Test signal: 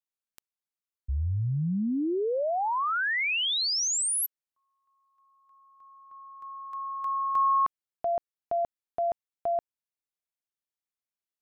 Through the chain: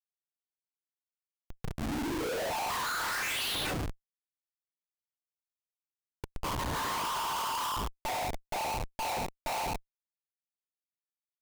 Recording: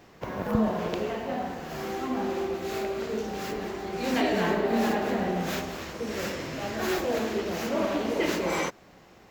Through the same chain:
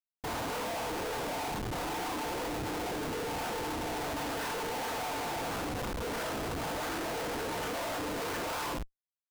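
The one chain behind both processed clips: noise vocoder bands 16; crossover distortion -45.5 dBFS; HPF 1100 Hz 12 dB/oct; tilt shelf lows +5.5 dB, about 1400 Hz; reverb removal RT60 0.6 s; LPF 3400 Hz 24 dB/oct; decimation with a swept rate 11×, swing 100% 0.78 Hz; bell 2100 Hz -6 dB 0.27 oct; FDN reverb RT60 0.48 s, low-frequency decay 1.35×, high-frequency decay 0.3×, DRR -6.5 dB; Schmitt trigger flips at -40 dBFS; gain -2.5 dB

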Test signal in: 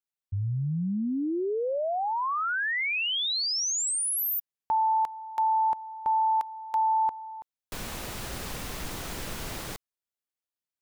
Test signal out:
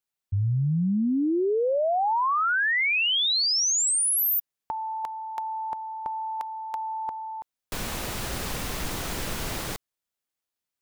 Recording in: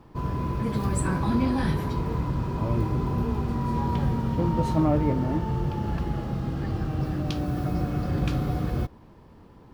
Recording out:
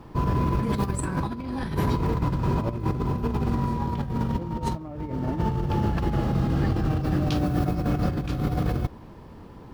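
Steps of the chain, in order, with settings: negative-ratio compressor -28 dBFS, ratio -0.5; gain +3.5 dB

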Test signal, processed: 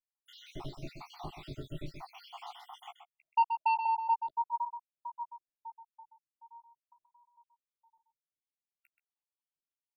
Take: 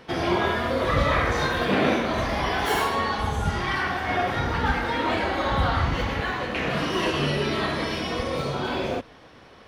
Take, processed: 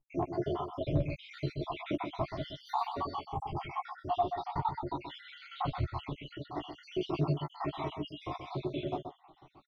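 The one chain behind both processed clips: random spectral dropouts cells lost 77%; high shelf 8100 Hz +4 dB; vibrato 0.46 Hz 56 cents; fixed phaser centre 330 Hz, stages 8; overloaded stage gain 20 dB; air absorption 330 m; doubler 14 ms -8 dB; outdoor echo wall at 22 m, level -8 dB; gain -1 dB

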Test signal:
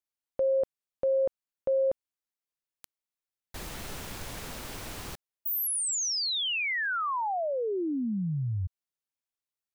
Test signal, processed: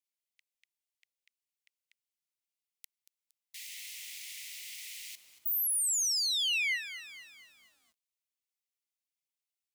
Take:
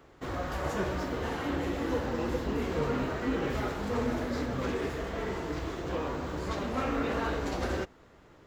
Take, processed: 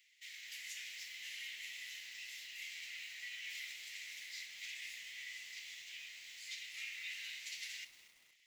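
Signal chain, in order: Chebyshev high-pass 2000 Hz, order 6; lo-fi delay 0.232 s, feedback 55%, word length 9-bit, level -13 dB

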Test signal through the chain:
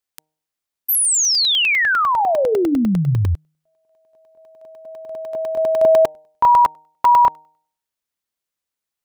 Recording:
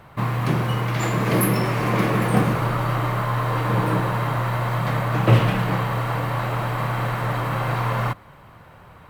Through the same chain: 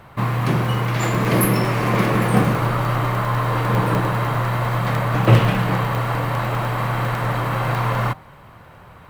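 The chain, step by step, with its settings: de-hum 154.9 Hz, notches 6; crackling interface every 0.10 s, samples 64, zero; gain +2.5 dB

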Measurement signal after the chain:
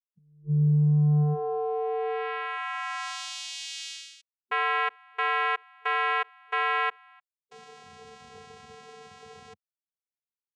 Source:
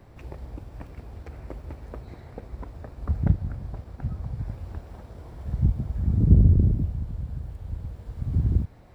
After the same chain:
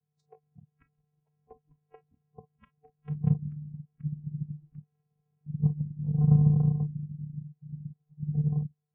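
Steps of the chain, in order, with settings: vocoder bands 4, square 149 Hz; spectral noise reduction 28 dB

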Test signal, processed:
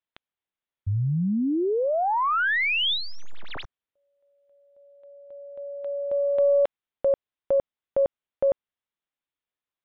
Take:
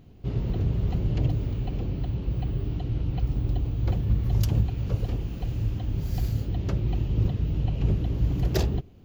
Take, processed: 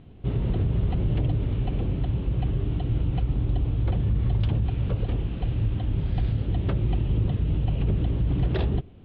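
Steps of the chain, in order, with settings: tracing distortion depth 0.044 ms; elliptic low-pass 3600 Hz, stop band 60 dB; limiter -20 dBFS; gain +4 dB

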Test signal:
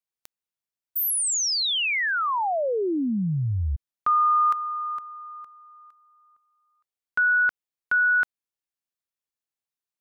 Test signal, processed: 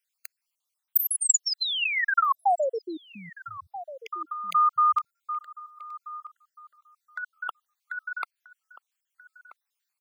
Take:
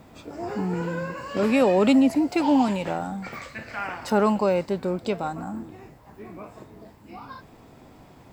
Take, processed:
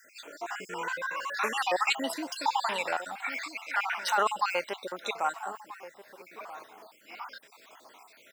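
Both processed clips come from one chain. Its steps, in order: random spectral dropouts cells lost 52%; HPF 1100 Hz 12 dB/oct; negative-ratio compressor -30 dBFS, ratio -0.5; outdoor echo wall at 220 m, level -14 dB; gain +7 dB

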